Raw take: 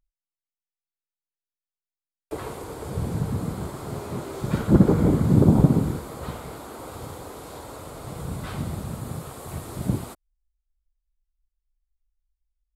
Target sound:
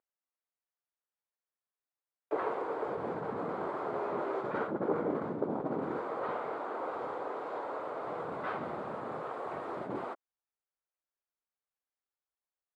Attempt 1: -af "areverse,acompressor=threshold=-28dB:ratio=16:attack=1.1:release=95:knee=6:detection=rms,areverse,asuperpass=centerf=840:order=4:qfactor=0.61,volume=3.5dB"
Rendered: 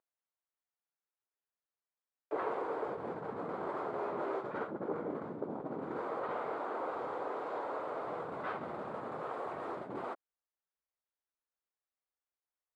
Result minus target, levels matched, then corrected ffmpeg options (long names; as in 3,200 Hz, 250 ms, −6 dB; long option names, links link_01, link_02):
downward compressor: peak gain reduction +6 dB
-af "areverse,acompressor=threshold=-21.5dB:ratio=16:attack=1.1:release=95:knee=6:detection=rms,areverse,asuperpass=centerf=840:order=4:qfactor=0.61,volume=3.5dB"